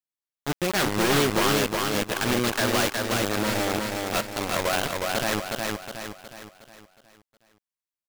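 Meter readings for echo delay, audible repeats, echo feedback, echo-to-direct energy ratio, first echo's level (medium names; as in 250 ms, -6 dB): 364 ms, 5, 46%, -2.0 dB, -3.0 dB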